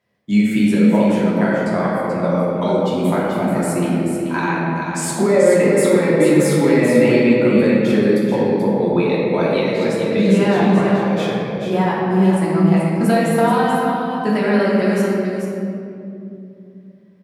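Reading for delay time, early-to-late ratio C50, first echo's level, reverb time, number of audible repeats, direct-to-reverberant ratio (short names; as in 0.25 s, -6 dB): 0.434 s, -3.5 dB, -6.0 dB, 2.6 s, 1, -7.5 dB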